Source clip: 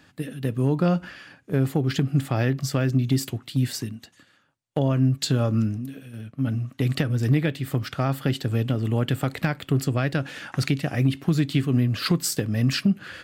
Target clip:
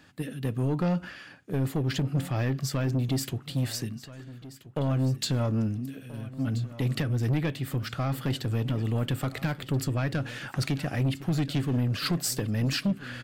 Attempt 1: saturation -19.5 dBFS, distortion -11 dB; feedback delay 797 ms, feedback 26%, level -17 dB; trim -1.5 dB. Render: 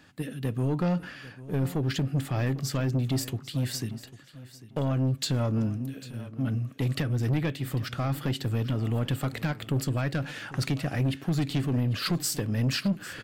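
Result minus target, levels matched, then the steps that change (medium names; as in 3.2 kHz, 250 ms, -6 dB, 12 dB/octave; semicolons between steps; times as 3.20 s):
echo 533 ms early
change: feedback delay 1330 ms, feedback 26%, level -17 dB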